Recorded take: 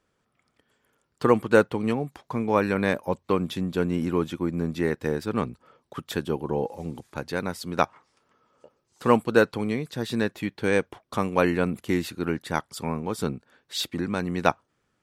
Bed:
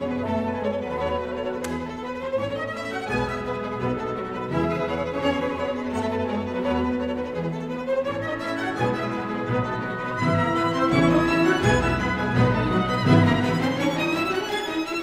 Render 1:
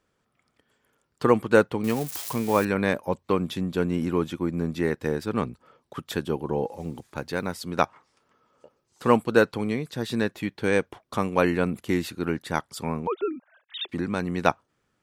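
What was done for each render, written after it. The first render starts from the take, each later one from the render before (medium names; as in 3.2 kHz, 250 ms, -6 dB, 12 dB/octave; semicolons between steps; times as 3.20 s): 1.84–2.65 s: zero-crossing glitches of -24 dBFS; 6.80–7.58 s: companded quantiser 8-bit; 13.07–13.89 s: formants replaced by sine waves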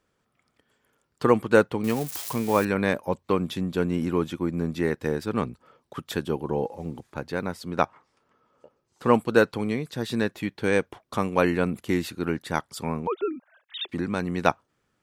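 6.68–9.14 s: treble shelf 3.1 kHz -6.5 dB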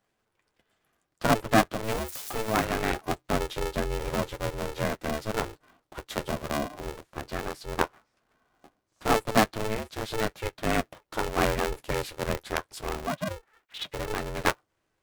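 flange 0.21 Hz, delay 8.9 ms, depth 3.6 ms, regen -33%; polarity switched at an audio rate 220 Hz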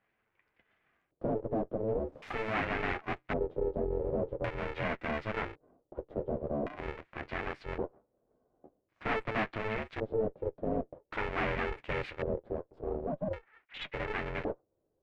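valve stage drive 30 dB, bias 0.65; LFO low-pass square 0.45 Hz 510–2200 Hz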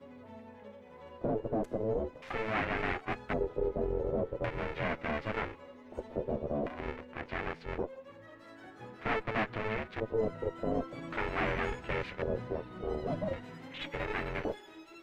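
add bed -25 dB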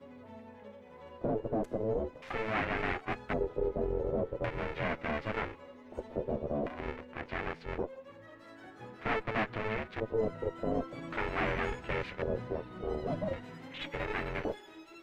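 no audible change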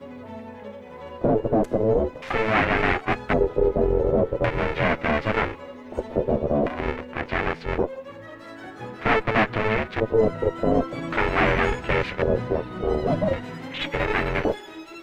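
trim +12 dB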